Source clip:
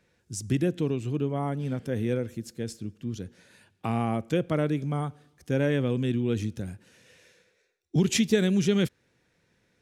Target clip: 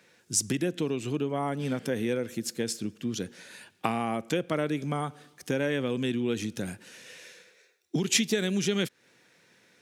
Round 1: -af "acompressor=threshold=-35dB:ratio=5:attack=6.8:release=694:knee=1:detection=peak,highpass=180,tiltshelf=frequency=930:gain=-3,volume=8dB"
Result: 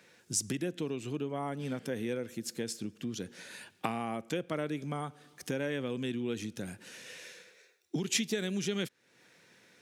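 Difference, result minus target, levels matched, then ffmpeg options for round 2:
downward compressor: peak gain reduction +6 dB
-af "acompressor=threshold=-27.5dB:ratio=5:attack=6.8:release=694:knee=1:detection=peak,highpass=180,tiltshelf=frequency=930:gain=-3,volume=8dB"

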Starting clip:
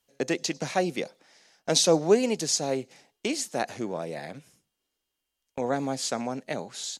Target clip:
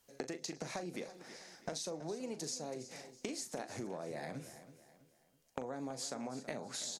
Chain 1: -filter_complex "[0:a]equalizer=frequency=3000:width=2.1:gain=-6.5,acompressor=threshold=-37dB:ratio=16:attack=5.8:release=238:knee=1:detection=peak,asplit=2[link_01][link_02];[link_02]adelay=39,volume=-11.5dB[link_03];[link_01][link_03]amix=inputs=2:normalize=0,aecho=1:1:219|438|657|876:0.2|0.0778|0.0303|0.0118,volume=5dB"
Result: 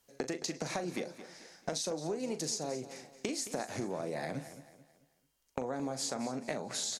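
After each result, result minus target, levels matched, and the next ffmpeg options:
echo 108 ms early; downward compressor: peak gain reduction −5.5 dB
-filter_complex "[0:a]equalizer=frequency=3000:width=2.1:gain=-6.5,acompressor=threshold=-37dB:ratio=16:attack=5.8:release=238:knee=1:detection=peak,asplit=2[link_01][link_02];[link_02]adelay=39,volume=-11.5dB[link_03];[link_01][link_03]amix=inputs=2:normalize=0,aecho=1:1:327|654|981|1308:0.2|0.0778|0.0303|0.0118,volume=5dB"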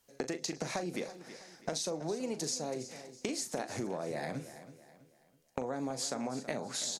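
downward compressor: peak gain reduction −5.5 dB
-filter_complex "[0:a]equalizer=frequency=3000:width=2.1:gain=-6.5,acompressor=threshold=-43dB:ratio=16:attack=5.8:release=238:knee=1:detection=peak,asplit=2[link_01][link_02];[link_02]adelay=39,volume=-11.5dB[link_03];[link_01][link_03]amix=inputs=2:normalize=0,aecho=1:1:327|654|981|1308:0.2|0.0778|0.0303|0.0118,volume=5dB"

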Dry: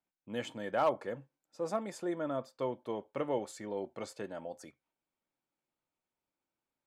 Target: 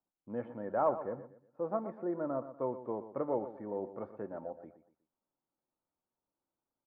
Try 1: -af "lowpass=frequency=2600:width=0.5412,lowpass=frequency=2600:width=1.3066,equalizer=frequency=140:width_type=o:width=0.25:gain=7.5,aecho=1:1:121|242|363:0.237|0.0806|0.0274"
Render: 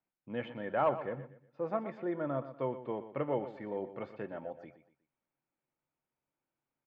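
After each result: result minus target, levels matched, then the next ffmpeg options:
2,000 Hz band +8.5 dB; 125 Hz band +4.5 dB
-af "lowpass=frequency=1300:width=0.5412,lowpass=frequency=1300:width=1.3066,equalizer=frequency=140:width_type=o:width=0.25:gain=7.5,aecho=1:1:121|242|363:0.237|0.0806|0.0274"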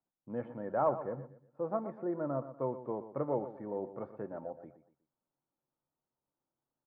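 125 Hz band +5.0 dB
-af "lowpass=frequency=1300:width=0.5412,lowpass=frequency=1300:width=1.3066,equalizer=frequency=140:width_type=o:width=0.25:gain=-2.5,aecho=1:1:121|242|363:0.237|0.0806|0.0274"

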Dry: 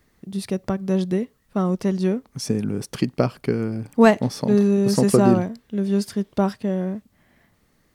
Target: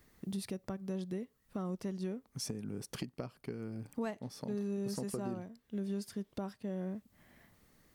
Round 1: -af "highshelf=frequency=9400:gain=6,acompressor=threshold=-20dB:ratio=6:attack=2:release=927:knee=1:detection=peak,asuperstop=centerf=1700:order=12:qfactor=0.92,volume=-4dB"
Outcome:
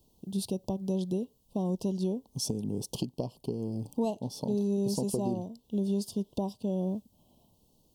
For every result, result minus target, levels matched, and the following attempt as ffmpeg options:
2,000 Hz band −18.0 dB; downward compressor: peak gain reduction −8 dB
-af "highshelf=frequency=9400:gain=6,acompressor=threshold=-20dB:ratio=6:attack=2:release=927:knee=1:detection=peak,volume=-4dB"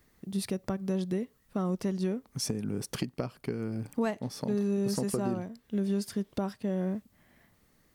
downward compressor: peak gain reduction −8 dB
-af "highshelf=frequency=9400:gain=6,acompressor=threshold=-29.5dB:ratio=6:attack=2:release=927:knee=1:detection=peak,volume=-4dB"

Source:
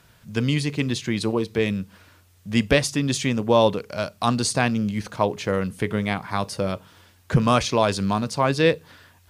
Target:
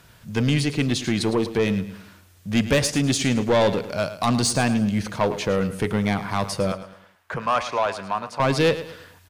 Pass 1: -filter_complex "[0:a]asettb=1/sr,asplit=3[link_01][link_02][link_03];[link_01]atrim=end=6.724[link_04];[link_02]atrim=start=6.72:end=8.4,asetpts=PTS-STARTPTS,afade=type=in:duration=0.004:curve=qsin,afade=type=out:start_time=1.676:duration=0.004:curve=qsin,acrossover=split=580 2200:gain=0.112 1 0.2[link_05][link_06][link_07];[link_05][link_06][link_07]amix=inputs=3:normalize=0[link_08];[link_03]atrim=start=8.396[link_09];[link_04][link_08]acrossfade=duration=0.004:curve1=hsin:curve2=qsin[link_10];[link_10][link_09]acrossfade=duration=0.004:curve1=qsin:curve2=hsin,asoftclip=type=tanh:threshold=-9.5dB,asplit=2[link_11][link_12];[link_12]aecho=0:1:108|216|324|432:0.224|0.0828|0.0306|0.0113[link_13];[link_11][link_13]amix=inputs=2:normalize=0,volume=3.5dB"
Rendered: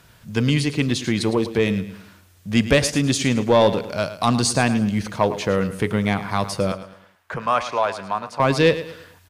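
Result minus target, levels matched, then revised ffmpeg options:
soft clipping: distortion −8 dB
-filter_complex "[0:a]asettb=1/sr,asplit=3[link_01][link_02][link_03];[link_01]atrim=end=6.724[link_04];[link_02]atrim=start=6.72:end=8.4,asetpts=PTS-STARTPTS,afade=type=in:duration=0.004:curve=qsin,afade=type=out:start_time=1.676:duration=0.004:curve=qsin,acrossover=split=580 2200:gain=0.112 1 0.2[link_05][link_06][link_07];[link_05][link_06][link_07]amix=inputs=3:normalize=0[link_08];[link_03]atrim=start=8.396[link_09];[link_04][link_08]acrossfade=duration=0.004:curve1=hsin:curve2=qsin[link_10];[link_10][link_09]acrossfade=duration=0.004:curve1=qsin:curve2=hsin,asoftclip=type=tanh:threshold=-17dB,asplit=2[link_11][link_12];[link_12]aecho=0:1:108|216|324|432:0.224|0.0828|0.0306|0.0113[link_13];[link_11][link_13]amix=inputs=2:normalize=0,volume=3.5dB"

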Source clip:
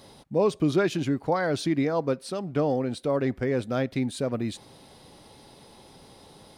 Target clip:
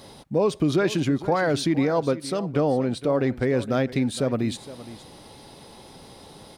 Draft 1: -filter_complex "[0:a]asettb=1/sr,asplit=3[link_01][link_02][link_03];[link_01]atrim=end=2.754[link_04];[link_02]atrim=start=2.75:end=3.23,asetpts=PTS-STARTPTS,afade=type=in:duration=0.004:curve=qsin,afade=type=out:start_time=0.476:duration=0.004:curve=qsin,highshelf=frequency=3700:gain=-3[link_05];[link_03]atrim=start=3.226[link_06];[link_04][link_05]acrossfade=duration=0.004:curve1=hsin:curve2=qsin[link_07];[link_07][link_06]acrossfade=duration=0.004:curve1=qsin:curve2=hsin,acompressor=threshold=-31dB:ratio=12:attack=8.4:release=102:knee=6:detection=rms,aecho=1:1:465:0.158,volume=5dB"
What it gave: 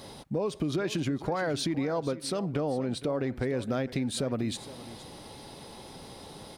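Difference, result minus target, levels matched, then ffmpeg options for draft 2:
downward compressor: peak gain reduction +9.5 dB
-filter_complex "[0:a]asettb=1/sr,asplit=3[link_01][link_02][link_03];[link_01]atrim=end=2.754[link_04];[link_02]atrim=start=2.75:end=3.23,asetpts=PTS-STARTPTS,afade=type=in:duration=0.004:curve=qsin,afade=type=out:start_time=0.476:duration=0.004:curve=qsin,highshelf=frequency=3700:gain=-3[link_05];[link_03]atrim=start=3.226[link_06];[link_04][link_05]acrossfade=duration=0.004:curve1=hsin:curve2=qsin[link_07];[link_07][link_06]acrossfade=duration=0.004:curve1=qsin:curve2=hsin,acompressor=threshold=-20.5dB:ratio=12:attack=8.4:release=102:knee=6:detection=rms,aecho=1:1:465:0.158,volume=5dB"

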